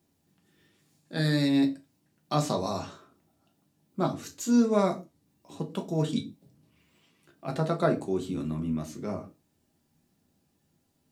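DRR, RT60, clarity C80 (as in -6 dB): 2.0 dB, no single decay rate, 22.5 dB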